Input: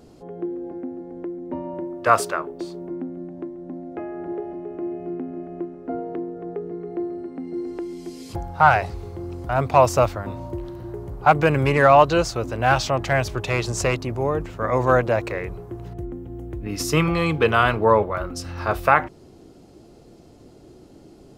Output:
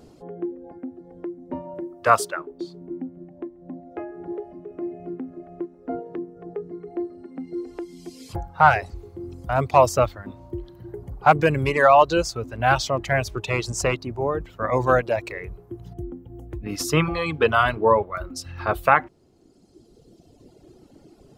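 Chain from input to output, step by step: reverb removal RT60 1.8 s

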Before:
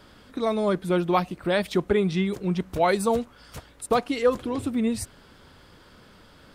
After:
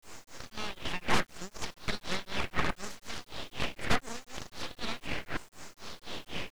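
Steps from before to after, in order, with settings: spectral levelling over time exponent 0.4; LFO high-pass saw down 0.74 Hz 790–4500 Hz; granulator 261 ms, grains 4 per s, pitch spread up and down by 0 st; integer overflow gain 15.5 dB; tilt EQ -3 dB/octave; full-wave rectifier; distance through air 53 m; word length cut 10-bit, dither none

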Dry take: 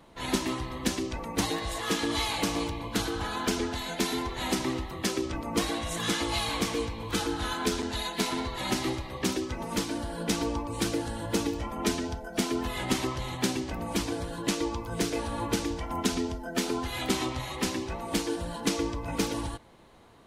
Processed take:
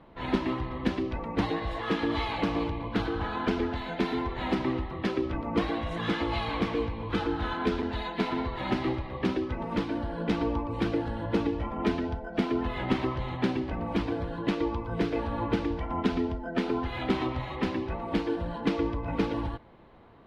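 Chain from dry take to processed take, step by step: distance through air 380 m; trim +2.5 dB

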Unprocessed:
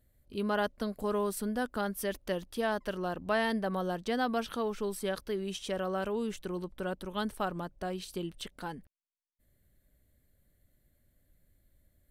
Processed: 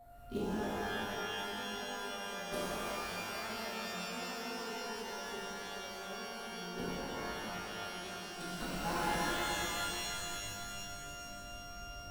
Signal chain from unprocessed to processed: backward echo that repeats 154 ms, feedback 60%, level -5 dB; inverted gate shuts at -29 dBFS, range -28 dB; in parallel at -5 dB: sample-rate reducer 3.4 kHz, jitter 20%; on the sum: whistle 700 Hz -55 dBFS; pitch-shifted reverb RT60 3.1 s, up +12 st, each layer -2 dB, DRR -10 dB; trim -1.5 dB

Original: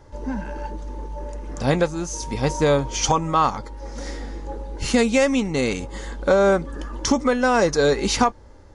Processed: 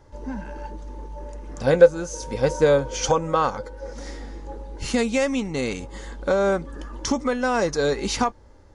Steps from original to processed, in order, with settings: 1.66–3.93 s: small resonant body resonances 510/1500 Hz, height 16 dB, ringing for 65 ms; trim -4 dB

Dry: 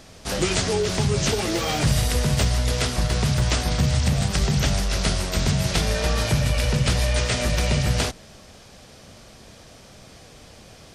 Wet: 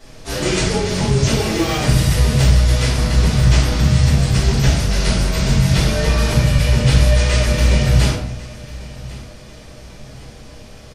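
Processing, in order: feedback delay 1096 ms, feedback 38%, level -19.5 dB; reverberation RT60 0.65 s, pre-delay 3 ms, DRR -11.5 dB; trim -7.5 dB

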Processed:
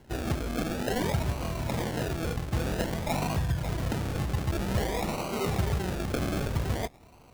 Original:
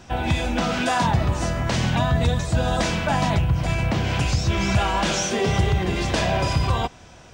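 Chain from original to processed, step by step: 1.78–2.37 s: tone controls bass -7 dB, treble +15 dB; decimation with a swept rate 36×, swing 60% 0.52 Hz; trim -8 dB

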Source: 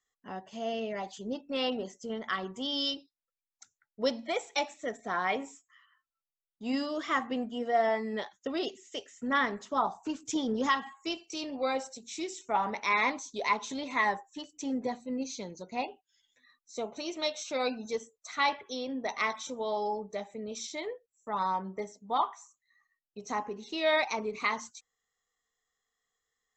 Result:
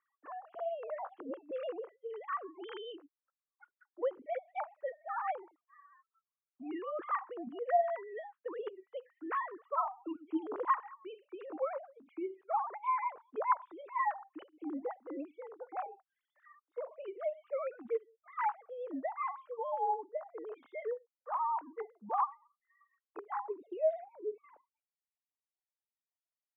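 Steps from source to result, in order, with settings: formants replaced by sine waves; low-pass sweep 1.2 kHz -> 300 Hz, 23.47–24.18 s; three bands compressed up and down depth 40%; trim -7 dB

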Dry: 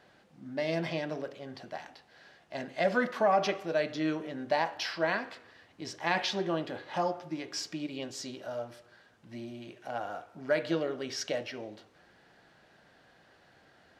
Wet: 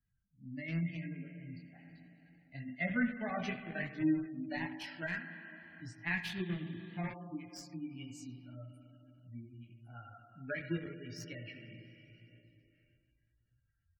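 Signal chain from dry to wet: expander on every frequency bin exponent 2; speakerphone echo 90 ms, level -12 dB; spring tank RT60 2.4 s, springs 35/57 ms, chirp 30 ms, DRR 6 dB; 1.83–2.75 s: transient shaper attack +5 dB, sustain +9 dB; in parallel at -3 dB: small samples zeroed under -30.5 dBFS; on the sum: dynamic bell 5.5 kHz, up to -3 dB, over -54 dBFS, Q 4.2; chorus voices 4, 0.88 Hz, delay 20 ms, depth 3.5 ms; spectral gate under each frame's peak -30 dB strong; graphic EQ 125/250/500/1000/2000/4000 Hz +11/+9/-10/-11/+9/-5 dB; three bands compressed up and down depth 40%; trim -3.5 dB

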